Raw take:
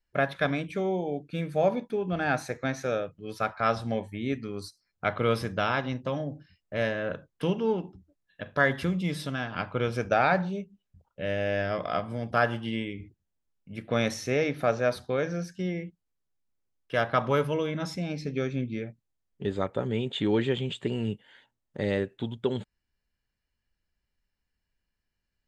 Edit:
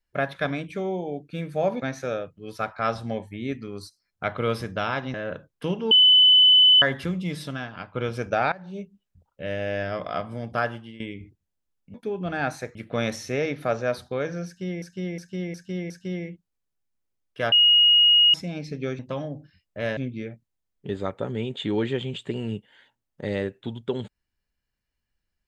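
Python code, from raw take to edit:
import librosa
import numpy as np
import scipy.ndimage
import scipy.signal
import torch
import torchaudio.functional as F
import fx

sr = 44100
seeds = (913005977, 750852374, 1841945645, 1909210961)

y = fx.edit(x, sr, fx.move(start_s=1.81, length_s=0.81, to_s=13.73),
    fx.move(start_s=5.95, length_s=0.98, to_s=18.53),
    fx.bleep(start_s=7.7, length_s=0.91, hz=3010.0, db=-11.5),
    fx.fade_out_to(start_s=9.34, length_s=0.39, floor_db=-10.5),
    fx.fade_in_from(start_s=10.31, length_s=0.27, curve='qua', floor_db=-20.5),
    fx.fade_out_to(start_s=12.32, length_s=0.47, floor_db=-16.5),
    fx.repeat(start_s=15.44, length_s=0.36, count=5),
    fx.bleep(start_s=17.06, length_s=0.82, hz=2880.0, db=-13.0), tone=tone)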